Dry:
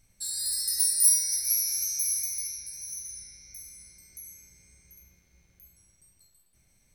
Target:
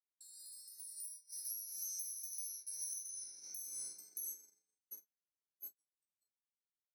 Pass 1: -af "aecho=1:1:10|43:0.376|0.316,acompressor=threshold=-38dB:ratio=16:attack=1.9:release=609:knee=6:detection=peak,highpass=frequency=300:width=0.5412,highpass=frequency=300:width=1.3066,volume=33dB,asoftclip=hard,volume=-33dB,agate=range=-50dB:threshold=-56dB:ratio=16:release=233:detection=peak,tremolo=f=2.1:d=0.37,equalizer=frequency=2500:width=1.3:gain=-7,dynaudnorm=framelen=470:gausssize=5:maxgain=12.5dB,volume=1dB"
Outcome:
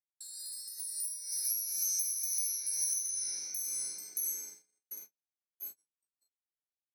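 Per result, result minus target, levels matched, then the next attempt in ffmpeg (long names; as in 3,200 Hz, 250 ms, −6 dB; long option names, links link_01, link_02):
downward compressor: peak gain reduction −10 dB; 2,000 Hz band +5.0 dB
-af "aecho=1:1:10|43:0.376|0.316,acompressor=threshold=-48.5dB:ratio=16:attack=1.9:release=609:knee=6:detection=peak,highpass=frequency=300:width=0.5412,highpass=frequency=300:width=1.3066,volume=33dB,asoftclip=hard,volume=-33dB,agate=range=-50dB:threshold=-56dB:ratio=16:release=233:detection=peak,tremolo=f=2.1:d=0.37,equalizer=frequency=2500:width=1.3:gain=-7,dynaudnorm=framelen=470:gausssize=5:maxgain=12.5dB,volume=1dB"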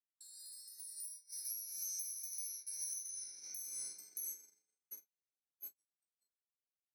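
2,000 Hz band +5.5 dB
-af "aecho=1:1:10|43:0.376|0.316,acompressor=threshold=-48.5dB:ratio=16:attack=1.9:release=609:knee=6:detection=peak,highpass=frequency=300:width=0.5412,highpass=frequency=300:width=1.3066,volume=33dB,asoftclip=hard,volume=-33dB,agate=range=-50dB:threshold=-56dB:ratio=16:release=233:detection=peak,tremolo=f=2.1:d=0.37,equalizer=frequency=2500:width=1.3:gain=-16,dynaudnorm=framelen=470:gausssize=5:maxgain=12.5dB,volume=1dB"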